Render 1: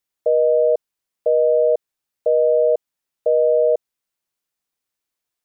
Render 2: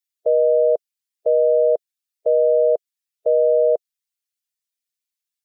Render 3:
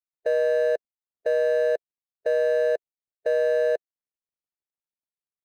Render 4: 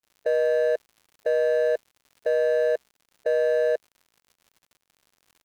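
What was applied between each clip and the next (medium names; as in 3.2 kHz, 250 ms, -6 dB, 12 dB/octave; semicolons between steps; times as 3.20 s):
expander on every frequency bin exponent 1.5
median filter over 41 samples; peak limiter -17 dBFS, peak gain reduction 4.5 dB
crackle 120 per s -45 dBFS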